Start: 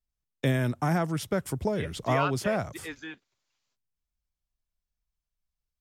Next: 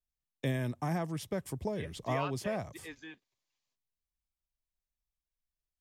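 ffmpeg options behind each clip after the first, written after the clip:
ffmpeg -i in.wav -af "bandreject=frequency=1400:width=5.2,volume=-7dB" out.wav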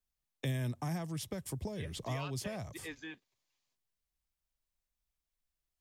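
ffmpeg -i in.wav -filter_complex "[0:a]acrossover=split=140|3000[link_01][link_02][link_03];[link_02]acompressor=threshold=-42dB:ratio=6[link_04];[link_01][link_04][link_03]amix=inputs=3:normalize=0,volume=2.5dB" out.wav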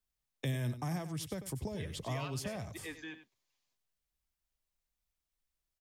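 ffmpeg -i in.wav -af "aecho=1:1:95:0.251" out.wav

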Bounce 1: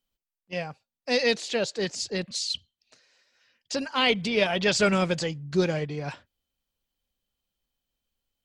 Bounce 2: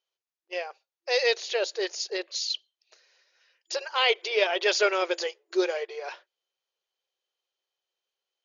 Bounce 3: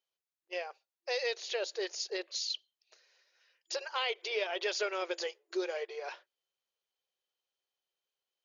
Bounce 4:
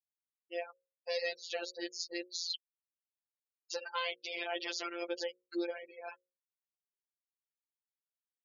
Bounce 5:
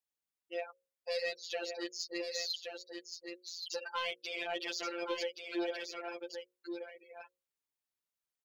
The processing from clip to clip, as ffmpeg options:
ffmpeg -i in.wav -af "afftfilt=real='re*between(b*sr/4096,340,7000)':imag='im*between(b*sr/4096,340,7000)':win_size=4096:overlap=0.75" out.wav
ffmpeg -i in.wav -af "acompressor=threshold=-27dB:ratio=3,volume=-4.5dB" out.wav
ffmpeg -i in.wav -af "afftfilt=real='re*gte(hypot(re,im),0.01)':imag='im*gte(hypot(re,im),0.01)':win_size=1024:overlap=0.75,afftfilt=real='hypot(re,im)*cos(PI*b)':imag='0':win_size=1024:overlap=0.75,bandreject=frequency=60:width_type=h:width=6,bandreject=frequency=120:width_type=h:width=6,bandreject=frequency=180:width_type=h:width=6,bandreject=frequency=240:width_type=h:width=6,bandreject=frequency=300:width_type=h:width=6,bandreject=frequency=360:width_type=h:width=6,bandreject=frequency=420:width_type=h:width=6,bandreject=frequency=480:width_type=h:width=6,bandreject=frequency=540:width_type=h:width=6,volume=1dB" out.wav
ffmpeg -i in.wav -filter_complex "[0:a]asplit=2[link_01][link_02];[link_02]asoftclip=type=tanh:threshold=-35dB,volume=-4dB[link_03];[link_01][link_03]amix=inputs=2:normalize=0,aecho=1:1:1124:0.501,volume=-3dB" out.wav

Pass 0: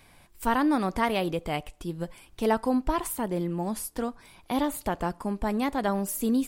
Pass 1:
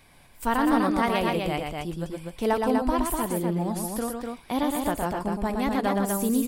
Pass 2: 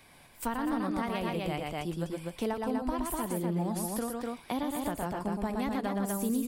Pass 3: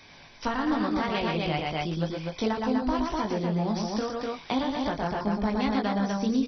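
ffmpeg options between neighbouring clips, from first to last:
ffmpeg -i in.wav -af "aecho=1:1:116|248:0.596|0.631" out.wav
ffmpeg -i in.wav -filter_complex "[0:a]lowshelf=frequency=74:gain=-11,acrossover=split=180[link_01][link_02];[link_02]acompressor=threshold=-31dB:ratio=6[link_03];[link_01][link_03]amix=inputs=2:normalize=0" out.wav
ffmpeg -i in.wav -filter_complex "[0:a]crystalizer=i=2:c=0,asplit=2[link_01][link_02];[link_02]adelay=19,volume=-4.5dB[link_03];[link_01][link_03]amix=inputs=2:normalize=0,volume=3.5dB" -ar 24000 -c:a mp2 -b:a 32k out.mp2

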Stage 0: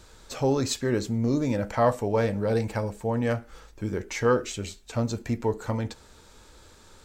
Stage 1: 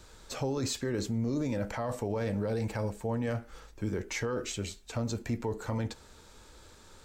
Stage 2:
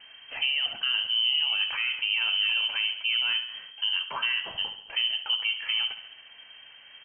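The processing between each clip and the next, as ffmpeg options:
ffmpeg -i in.wav -filter_complex "[0:a]alimiter=limit=-22dB:level=0:latency=1:release=12,acrossover=split=350|3000[link_01][link_02][link_03];[link_02]acompressor=threshold=-30dB:ratio=6[link_04];[link_01][link_04][link_03]amix=inputs=3:normalize=0,volume=-2dB" out.wav
ffmpeg -i in.wav -af "aecho=1:1:69|138|207|276|345|414:0.251|0.146|0.0845|0.049|0.0284|0.0165,lowpass=frequency=2700:width_type=q:width=0.5098,lowpass=frequency=2700:width_type=q:width=0.6013,lowpass=frequency=2700:width_type=q:width=0.9,lowpass=frequency=2700:width_type=q:width=2.563,afreqshift=-3200,volume=4.5dB" out.wav

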